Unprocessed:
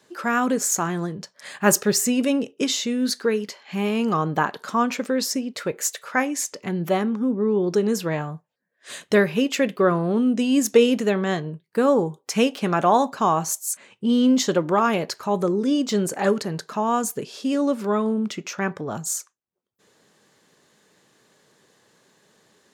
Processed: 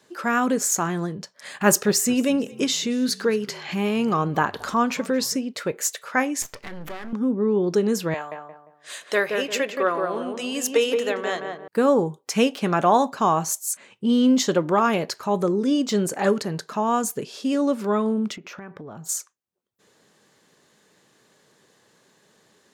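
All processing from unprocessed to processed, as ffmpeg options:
-filter_complex "[0:a]asettb=1/sr,asplit=3[a][b][c];[a]atrim=end=1.614[d];[b]atrim=start=1.61:end=5.36,asetpts=PTS-STARTPTS,afade=t=in:d=0.004:c=qsin,afade=t=out:st=3.746:d=0.004:c=qsin,acompressor=mode=upward:threshold=-23dB:ratio=2.5:attack=3.2:release=140:knee=2.83:detection=peak,asplit=3[e][f][g];[f]adelay=224,afreqshift=-56,volume=-22.5dB[h];[g]adelay=448,afreqshift=-112,volume=-31.4dB[i];[e][h][i]amix=inputs=3:normalize=0,atrim=end_sample=165375[j];[c]atrim=start=5.356[k];[d][j]acrossfade=d=0.004:c1=hsin:c2=qsin[l];[l][k]acrossfade=d=0.004:c1=qsin:c2=hsin,asettb=1/sr,asplit=3[m][n][o];[m]atrim=end=6.424[p];[n]atrim=start=6.42:end=7.13,asetpts=PTS-STARTPTS,afade=t=in:d=0.004:c=qsin,afade=t=out:st=0.706:d=0.004:c=qsin,equalizer=f=1.6k:w=0.84:g=9.5,aeval=exprs='max(val(0),0)':c=same,acompressor=threshold=-31dB:ratio=4:attack=3.2:release=140:knee=1:detection=peak[q];[o]atrim=start=7.126[r];[p][q]acrossfade=d=0.004:c1=hsin:c2=qsin[s];[s][r]acrossfade=d=0.004:c1=qsin:c2=hsin,asettb=1/sr,asplit=3[t][u][v];[t]atrim=end=8.144[w];[u]atrim=start=8.14:end=11.68,asetpts=PTS-STARTPTS,afade=t=in:d=0.004:c=qsin,afade=t=out:st=3.536:d=0.004:c=qsin,highpass=550,asplit=2[x][y];[y]adelay=175,lowpass=f=1.3k:p=1,volume=-3dB,asplit=2[z][aa];[aa]adelay=175,lowpass=f=1.3k:p=1,volume=0.37,asplit=2[ab][ac];[ac]adelay=175,lowpass=f=1.3k:p=1,volume=0.37,asplit=2[ad][ae];[ae]adelay=175,lowpass=f=1.3k:p=1,volume=0.37,asplit=2[af][ag];[ag]adelay=175,lowpass=f=1.3k:p=1,volume=0.37[ah];[x][z][ab][ad][af][ah]amix=inputs=6:normalize=0,atrim=end_sample=156114[ai];[v]atrim=start=11.676[aj];[w][ai]acrossfade=d=0.004:c1=hsin:c2=qsin[ak];[ak][aj]acrossfade=d=0.004:c1=qsin:c2=hsin,asettb=1/sr,asplit=3[al][am][an];[al]atrim=end=18.364[ao];[am]atrim=start=18.36:end=19.09,asetpts=PTS-STARTPTS,afade=t=in:d=0.004:c=qsin,afade=t=out:st=0.726:d=0.004:c=qsin,equalizer=f=8k:w=0.65:g=-15,acompressor=threshold=-34dB:ratio=16:attack=3.2:release=140:knee=1:detection=peak[ap];[an]atrim=start=19.086[aq];[ao][ap]acrossfade=d=0.004:c1=hsin:c2=qsin[ar];[ar][aq]acrossfade=d=0.004:c1=qsin:c2=hsin"

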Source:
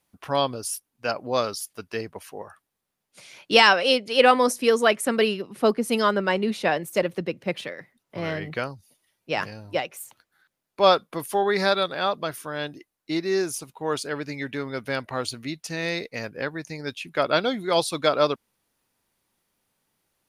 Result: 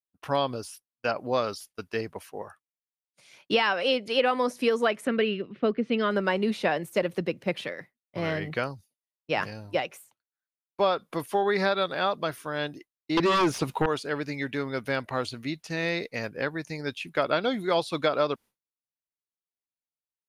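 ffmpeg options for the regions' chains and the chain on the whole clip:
-filter_complex "[0:a]asettb=1/sr,asplit=3[a][b][c];[a]atrim=end=5.074[d];[b]atrim=start=5.07:end=6.11,asetpts=PTS-STARTPTS,afade=t=in:d=0.004:c=qsin,afade=t=out:st=1.036:d=0.004:c=qsin,lowpass=f=3.3k:w=0.5412,lowpass=f=3.3k:w=1.3066,equalizer=f=880:t=o:w=0.74:g=-11.5[e];[c]atrim=start=6.106[f];[d][e]acrossfade=d=0.004:c1=hsin:c2=qsin[g];[g][f]acrossfade=d=0.004:c1=qsin:c2=hsin,asettb=1/sr,asplit=3[h][i][j];[h]atrim=end=13.174[k];[i]atrim=start=13.17:end=13.86,asetpts=PTS-STARTPTS,afade=t=in:d=0.004:c=qsin,afade=t=out:st=0.686:d=0.004:c=qsin,highshelf=f=6.8k:g=-2.5,aeval=exprs='0.178*sin(PI/2*3.55*val(0)/0.178)':c=same[l];[j]atrim=start=13.856[m];[k][l]acrossfade=d=0.004:c1=hsin:c2=qsin[n];[n][m]acrossfade=d=0.004:c1=qsin:c2=hsin,acrossover=split=4000[o][p];[p]acompressor=threshold=-44dB:ratio=4:attack=1:release=60[q];[o][q]amix=inputs=2:normalize=0,agate=range=-33dB:threshold=-40dB:ratio=3:detection=peak,acompressor=threshold=-20dB:ratio=6"

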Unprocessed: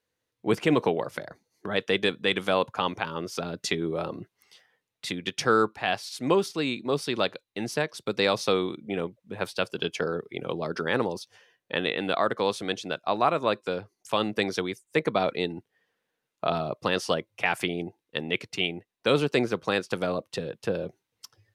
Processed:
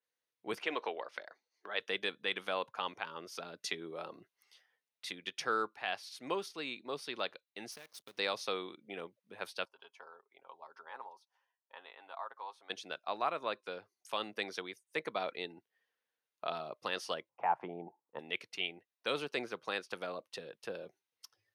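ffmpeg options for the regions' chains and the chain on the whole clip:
-filter_complex "[0:a]asettb=1/sr,asplit=3[a][b][c];[a]atrim=end=0.624[d];[b]atrim=start=0.62:end=1.8,asetpts=PTS-STARTPTS,afade=t=in:d=0.004:c=qsin,afade=t=out:st=1.176:d=0.004:c=qsin,highpass=360,lowpass=5.1k,equalizer=f=2.9k:w=0.38:g=2.5[e];[c]atrim=start=1.796[f];[d][e]acrossfade=d=0.004:c1=hsin:c2=qsin[g];[g][f]acrossfade=d=0.004:c1=qsin:c2=hsin,asettb=1/sr,asplit=3[h][i][j];[h]atrim=end=7.724[k];[i]atrim=start=7.72:end=8.18,asetpts=PTS-STARTPTS,afade=t=in:d=0.004:c=qsin,afade=t=out:st=0.456:d=0.004:c=qsin,equalizer=f=1.1k:w=0.42:g=-8,acompressor=threshold=-35dB:ratio=8:attack=3.2:release=140:knee=1:detection=peak,acrusher=bits=8:dc=4:mix=0:aa=0.000001[l];[j]atrim=start=8.176[m];[k][l]acrossfade=d=0.004:c1=hsin:c2=qsin[n];[n][m]acrossfade=d=0.004:c1=qsin:c2=hsin,asettb=1/sr,asplit=3[o][p][q];[o]atrim=end=9.654[r];[p]atrim=start=9.65:end=12.7,asetpts=PTS-STARTPTS,afade=t=in:d=0.004:c=qsin,afade=t=out:st=3.046:d=0.004:c=qsin,bandpass=f=920:t=q:w=4.5,aemphasis=mode=production:type=75fm,aecho=1:1:7.4:0.4,atrim=end_sample=134505[s];[q]atrim=start=12.696[t];[r][s]acrossfade=d=0.004:c1=hsin:c2=qsin[u];[u][t]acrossfade=d=0.004:c1=qsin:c2=hsin,asettb=1/sr,asplit=3[v][w][x];[v]atrim=end=17.294[y];[w]atrim=start=17.29:end=18.19,asetpts=PTS-STARTPTS,afade=t=in:d=0.004:c=qsin,afade=t=out:st=0.896:d=0.004:c=qsin,lowpass=f=900:t=q:w=4.2,lowshelf=f=110:t=q:w=3:g=-8[z];[x]atrim=start=18.186[aa];[y][z]acrossfade=d=0.004:c1=hsin:c2=qsin[ab];[ab][aa]acrossfade=d=0.004:c1=qsin:c2=hsin,highpass=f=790:p=1,bandreject=f=7.5k:w=6.3,adynamicequalizer=threshold=0.00562:dfrequency=4400:dqfactor=0.7:tfrequency=4400:tqfactor=0.7:attack=5:release=100:ratio=0.375:range=3:mode=cutabove:tftype=highshelf,volume=-8dB"

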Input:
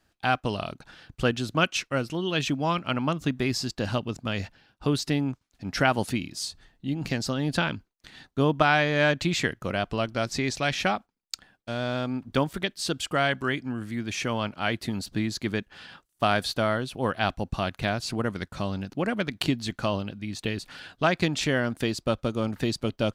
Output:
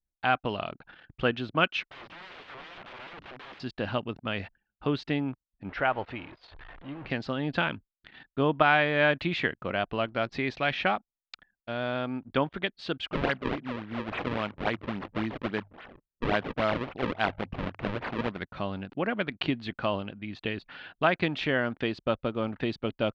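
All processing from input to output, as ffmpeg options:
-filter_complex "[0:a]asettb=1/sr,asplit=3[a][b][c];[a]atrim=end=1.824[d];[b]atrim=start=1.82:end=3.6,asetpts=PTS-STARTPTS,afade=t=in:d=0.004:c=qsin,afade=t=out:st=1.776:d=0.004:c=qsin,acompressor=threshold=-29dB:ratio=16:attack=3.2:release=140:knee=1:detection=peak,aeval=exprs='(mod(75*val(0)+1,2)-1)/75':c=same[e];[c]atrim=start=3.596[f];[d][e]acrossfade=d=0.004:c1=hsin:c2=qsin[g];[g][f]acrossfade=d=0.004:c1=qsin:c2=hsin,asettb=1/sr,asplit=3[h][i][j];[h]atrim=end=5.694[k];[i]atrim=start=5.69:end=7.1,asetpts=PTS-STARTPTS,afade=t=in:d=0.004:c=qsin,afade=t=out:st=1.406:d=0.004:c=qsin,aeval=exprs='val(0)+0.5*0.0211*sgn(val(0))':c=same,lowpass=f=1.3k:p=1,equalizer=f=200:t=o:w=1.5:g=-13[l];[j]atrim=start=7.096[m];[k][l]acrossfade=d=0.004:c1=hsin:c2=qsin[n];[n][m]acrossfade=d=0.004:c1=qsin:c2=hsin,asettb=1/sr,asplit=3[o][p][q];[o]atrim=end=13.124[r];[p]atrim=start=13.12:end=18.39,asetpts=PTS-STARTPTS,afade=t=in:d=0.004:c=qsin,afade=t=out:st=5.266:d=0.004:c=qsin,bandreject=f=50:t=h:w=6,bandreject=f=100:t=h:w=6,bandreject=f=150:t=h:w=6,acrusher=samples=35:mix=1:aa=0.000001:lfo=1:lforange=56:lforate=3.6[s];[q]atrim=start=18.386[t];[r][s]acrossfade=d=0.004:c1=hsin:c2=qsin[u];[u][t]acrossfade=d=0.004:c1=qsin:c2=hsin,lowpass=f=3.3k:w=0.5412,lowpass=f=3.3k:w=1.3066,anlmdn=0.00398,lowshelf=f=220:g=-8"

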